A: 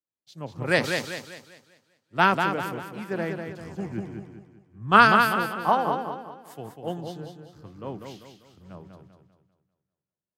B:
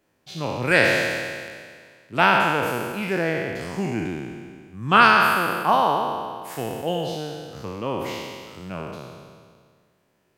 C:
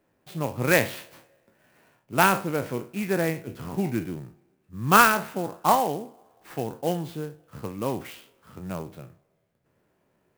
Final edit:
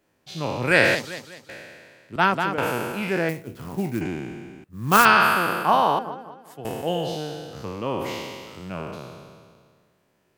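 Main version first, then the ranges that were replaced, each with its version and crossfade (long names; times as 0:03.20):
B
0:00.95–0:01.49: punch in from A
0:02.16–0:02.58: punch in from A
0:03.29–0:04.01: punch in from C
0:04.64–0:05.05: punch in from C
0:05.99–0:06.65: punch in from A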